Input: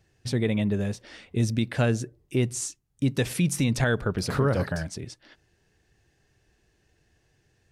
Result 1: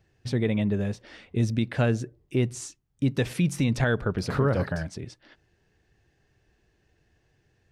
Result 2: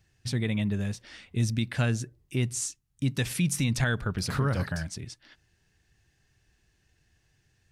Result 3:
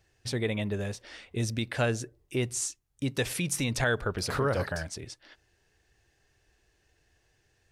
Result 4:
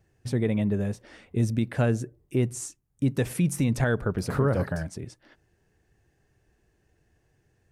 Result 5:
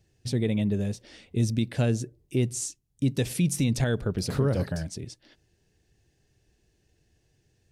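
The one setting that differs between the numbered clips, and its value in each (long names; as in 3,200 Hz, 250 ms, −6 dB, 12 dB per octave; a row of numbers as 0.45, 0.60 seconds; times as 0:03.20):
parametric band, centre frequency: 11,000, 470, 180, 4,100, 1,300 Hertz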